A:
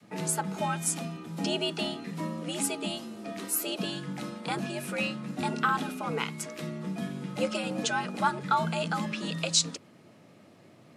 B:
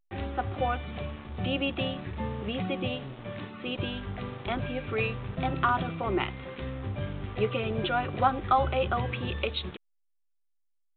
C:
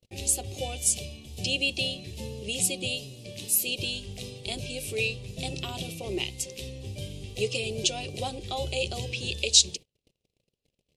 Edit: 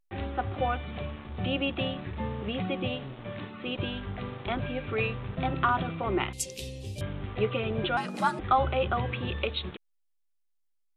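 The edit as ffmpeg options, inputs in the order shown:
-filter_complex "[1:a]asplit=3[a][b][c];[a]atrim=end=6.332[d];[2:a]atrim=start=6.328:end=7.012[e];[b]atrim=start=7.008:end=7.972[f];[0:a]atrim=start=7.968:end=8.392[g];[c]atrim=start=8.388[h];[d][e]acrossfade=d=0.004:c1=hsin:c2=hsin[i];[i][f]acrossfade=d=0.004:c1=hsin:c2=hsin[j];[j][g]acrossfade=d=0.004:c1=hsin:c2=hsin[k];[k][h]acrossfade=d=0.004:c1=hsin:c2=hsin"

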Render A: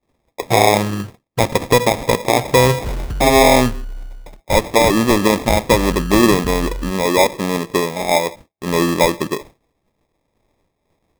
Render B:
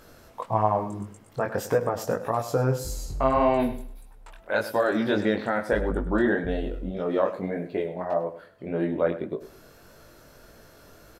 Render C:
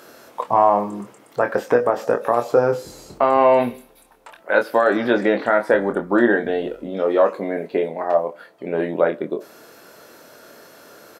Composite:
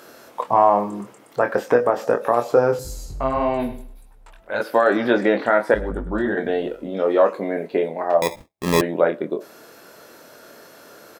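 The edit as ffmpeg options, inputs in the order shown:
-filter_complex "[1:a]asplit=2[a][b];[2:a]asplit=4[c][d][e][f];[c]atrim=end=2.792[g];[a]atrim=start=2.788:end=4.602[h];[d]atrim=start=4.598:end=5.742[i];[b]atrim=start=5.738:end=6.372[j];[e]atrim=start=6.368:end=8.222[k];[0:a]atrim=start=8.218:end=8.812[l];[f]atrim=start=8.808[m];[g][h]acrossfade=d=0.004:c1=hsin:c2=hsin[n];[n][i]acrossfade=d=0.004:c1=hsin:c2=hsin[o];[o][j]acrossfade=d=0.004:c1=hsin:c2=hsin[p];[p][k]acrossfade=d=0.004:c1=hsin:c2=hsin[q];[q][l]acrossfade=d=0.004:c1=hsin:c2=hsin[r];[r][m]acrossfade=d=0.004:c1=hsin:c2=hsin"

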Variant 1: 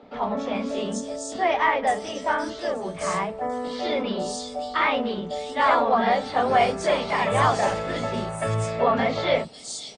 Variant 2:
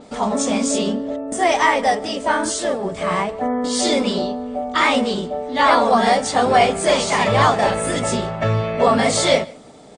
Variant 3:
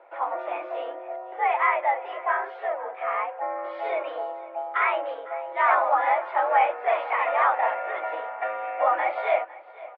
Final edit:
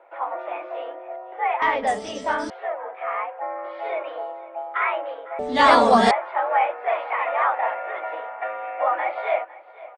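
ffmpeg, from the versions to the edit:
-filter_complex "[2:a]asplit=3[a][b][c];[a]atrim=end=1.622[d];[0:a]atrim=start=1.618:end=2.502[e];[b]atrim=start=2.498:end=5.392[f];[1:a]atrim=start=5.388:end=6.112[g];[c]atrim=start=6.108[h];[d][e]acrossfade=d=0.004:c1=hsin:c2=hsin[i];[i][f]acrossfade=d=0.004:c1=hsin:c2=hsin[j];[j][g]acrossfade=d=0.004:c1=hsin:c2=hsin[k];[k][h]acrossfade=d=0.004:c1=hsin:c2=hsin"

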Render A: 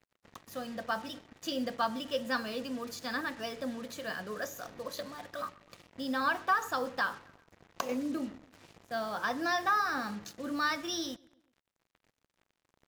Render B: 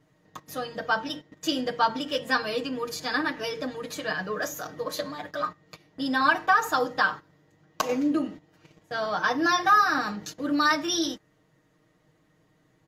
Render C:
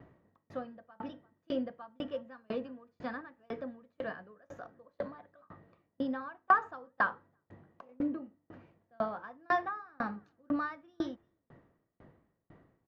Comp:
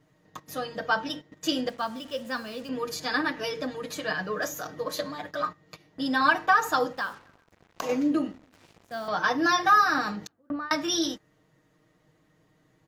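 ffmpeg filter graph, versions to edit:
-filter_complex "[0:a]asplit=3[a][b][c];[1:a]asplit=5[d][e][f][g][h];[d]atrim=end=1.692[i];[a]atrim=start=1.688:end=2.692[j];[e]atrim=start=2.688:end=6.932[k];[b]atrim=start=6.928:end=7.822[l];[f]atrim=start=7.818:end=8.322[m];[c]atrim=start=8.318:end=9.082[n];[g]atrim=start=9.078:end=10.272[o];[2:a]atrim=start=10.268:end=10.712[p];[h]atrim=start=10.708[q];[i][j]acrossfade=d=0.004:c1=hsin:c2=hsin[r];[r][k]acrossfade=d=0.004:c1=hsin:c2=hsin[s];[s][l]acrossfade=d=0.004:c1=hsin:c2=hsin[t];[t][m]acrossfade=d=0.004:c1=hsin:c2=hsin[u];[u][n]acrossfade=d=0.004:c1=hsin:c2=hsin[v];[v][o]acrossfade=d=0.004:c1=hsin:c2=hsin[w];[w][p]acrossfade=d=0.004:c1=hsin:c2=hsin[x];[x][q]acrossfade=d=0.004:c1=hsin:c2=hsin"

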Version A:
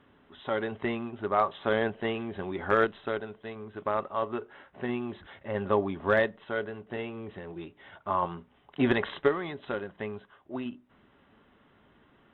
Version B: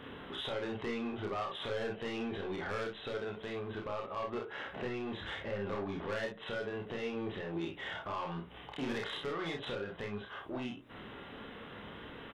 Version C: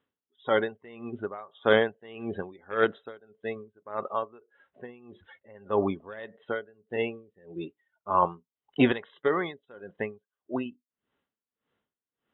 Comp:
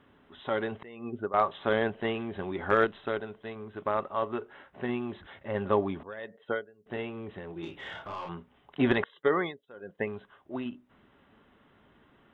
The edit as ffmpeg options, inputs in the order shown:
-filter_complex "[2:a]asplit=3[a][b][c];[0:a]asplit=5[d][e][f][g][h];[d]atrim=end=0.832[i];[a]atrim=start=0.828:end=1.342[j];[e]atrim=start=1.338:end=6.032[k];[b]atrim=start=6.028:end=6.862[l];[f]atrim=start=6.858:end=7.632[m];[1:a]atrim=start=7.628:end=8.292[n];[g]atrim=start=8.288:end=9.042[o];[c]atrim=start=9.038:end=10.072[p];[h]atrim=start=10.068[q];[i][j]acrossfade=d=0.004:c1=hsin:c2=hsin[r];[r][k]acrossfade=d=0.004:c1=hsin:c2=hsin[s];[s][l]acrossfade=d=0.004:c1=hsin:c2=hsin[t];[t][m]acrossfade=d=0.004:c1=hsin:c2=hsin[u];[u][n]acrossfade=d=0.004:c1=hsin:c2=hsin[v];[v][o]acrossfade=d=0.004:c1=hsin:c2=hsin[w];[w][p]acrossfade=d=0.004:c1=hsin:c2=hsin[x];[x][q]acrossfade=d=0.004:c1=hsin:c2=hsin"

